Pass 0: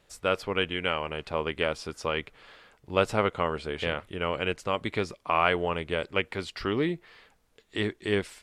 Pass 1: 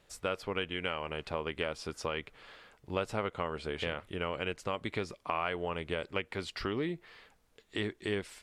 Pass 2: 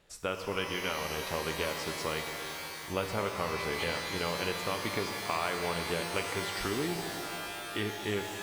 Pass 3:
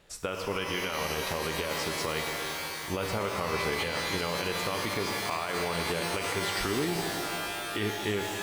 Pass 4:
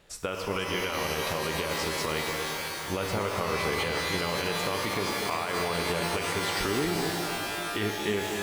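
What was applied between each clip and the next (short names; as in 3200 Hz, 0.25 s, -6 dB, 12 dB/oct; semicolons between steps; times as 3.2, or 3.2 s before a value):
compressor 2.5:1, threshold -31 dBFS, peak gain reduction 9.5 dB; gain -1.5 dB
shimmer reverb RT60 3.3 s, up +12 st, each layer -2 dB, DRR 5 dB
limiter -25 dBFS, peak gain reduction 9 dB; gain +5 dB
echo with dull and thin repeats by turns 0.241 s, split 1500 Hz, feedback 56%, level -7 dB; gain +1 dB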